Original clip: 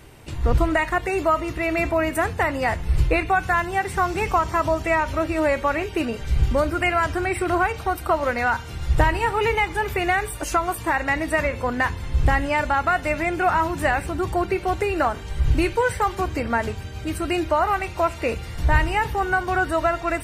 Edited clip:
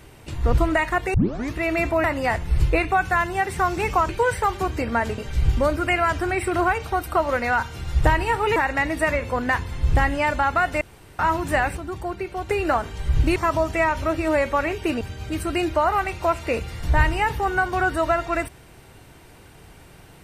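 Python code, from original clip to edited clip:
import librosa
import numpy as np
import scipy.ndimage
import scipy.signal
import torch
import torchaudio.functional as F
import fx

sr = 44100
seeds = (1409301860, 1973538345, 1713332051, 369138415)

y = fx.edit(x, sr, fx.tape_start(start_s=1.14, length_s=0.39),
    fx.cut(start_s=2.04, length_s=0.38),
    fx.swap(start_s=4.47, length_s=1.65, other_s=15.67, other_length_s=1.09),
    fx.cut(start_s=9.5, length_s=1.37),
    fx.room_tone_fill(start_s=13.12, length_s=0.38),
    fx.clip_gain(start_s=14.08, length_s=0.72, db=-6.5), tone=tone)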